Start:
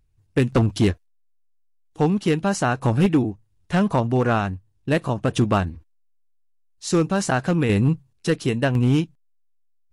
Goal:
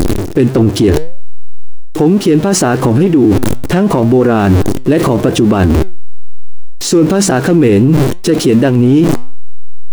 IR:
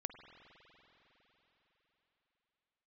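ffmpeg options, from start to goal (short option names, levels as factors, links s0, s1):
-af "aeval=exprs='val(0)+0.5*0.0282*sgn(val(0))':c=same,equalizer=f=350:t=o:w=1.2:g=12.5,areverse,acompressor=threshold=0.0708:ratio=8,areverse,flanger=delay=3.7:depth=4.8:regen=89:speed=0.71:shape=triangular,alimiter=level_in=35.5:limit=0.891:release=50:level=0:latency=1,volume=0.891"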